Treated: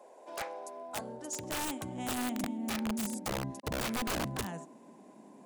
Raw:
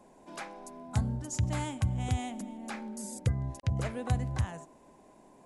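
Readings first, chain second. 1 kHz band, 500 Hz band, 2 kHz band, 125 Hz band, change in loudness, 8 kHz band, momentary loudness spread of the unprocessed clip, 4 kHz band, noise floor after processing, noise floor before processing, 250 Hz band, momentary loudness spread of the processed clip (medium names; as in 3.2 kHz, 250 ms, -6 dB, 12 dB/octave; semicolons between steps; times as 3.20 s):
+2.0 dB, +2.5 dB, +4.0 dB, -13.0 dB, -2.5 dB, +3.0 dB, 12 LU, +6.0 dB, -56 dBFS, -59 dBFS, +2.0 dB, 12 LU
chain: high-pass sweep 520 Hz -> 210 Hz, 0.85–2.87 s; integer overflow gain 28 dB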